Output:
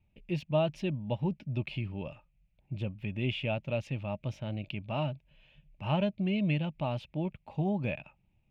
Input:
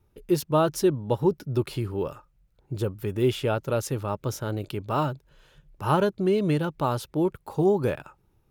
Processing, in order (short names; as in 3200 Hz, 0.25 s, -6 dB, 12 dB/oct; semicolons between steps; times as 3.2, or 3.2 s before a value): EQ curve 110 Hz 0 dB, 210 Hz +4 dB, 430 Hz -14 dB, 620 Hz +2 dB, 1400 Hz -14 dB, 2500 Hz +11 dB, 4200 Hz -8 dB, 12000 Hz -30 dB; gain -5.5 dB